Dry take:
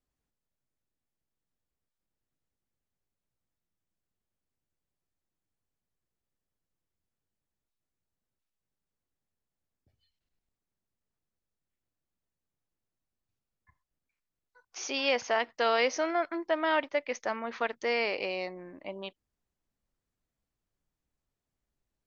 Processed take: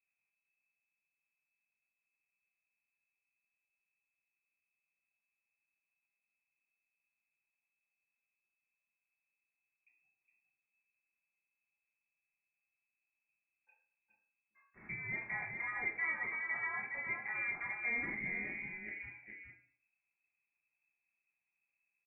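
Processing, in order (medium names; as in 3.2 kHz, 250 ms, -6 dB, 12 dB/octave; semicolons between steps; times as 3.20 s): peak limiter -25 dBFS, peak gain reduction 11 dB; frequency inversion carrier 2.6 kHz; delay 414 ms -5.5 dB; reverberation RT60 0.50 s, pre-delay 3 ms, DRR -2 dB; trim -9 dB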